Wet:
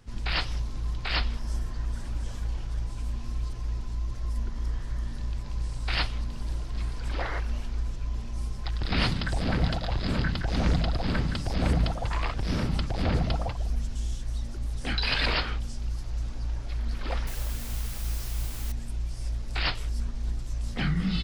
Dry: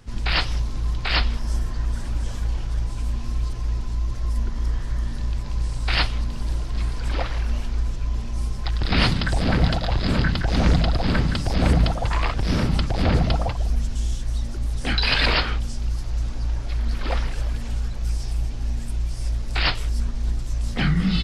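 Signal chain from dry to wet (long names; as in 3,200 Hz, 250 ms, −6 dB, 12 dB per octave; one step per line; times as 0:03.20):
0:07.19–0:07.40: sound drawn into the spectrogram noise 280–2,200 Hz −29 dBFS
0:17.27–0:18.72: bit-depth reduction 6 bits, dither triangular
level −6.5 dB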